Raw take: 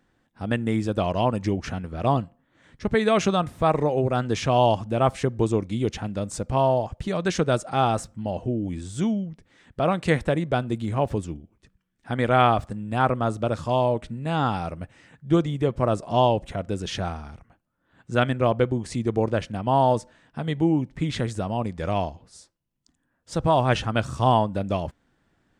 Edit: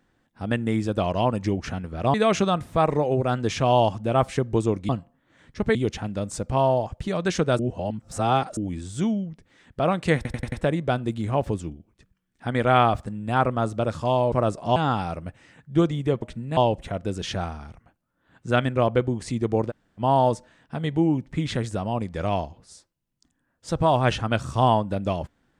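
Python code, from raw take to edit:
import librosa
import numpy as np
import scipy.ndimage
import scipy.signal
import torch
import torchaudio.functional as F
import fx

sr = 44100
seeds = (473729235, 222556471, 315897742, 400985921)

y = fx.edit(x, sr, fx.move(start_s=2.14, length_s=0.86, to_s=5.75),
    fx.reverse_span(start_s=7.59, length_s=0.98),
    fx.stutter(start_s=10.16, slice_s=0.09, count=5),
    fx.swap(start_s=13.96, length_s=0.35, other_s=15.77, other_length_s=0.44),
    fx.room_tone_fill(start_s=19.34, length_s=0.29, crossfade_s=0.04), tone=tone)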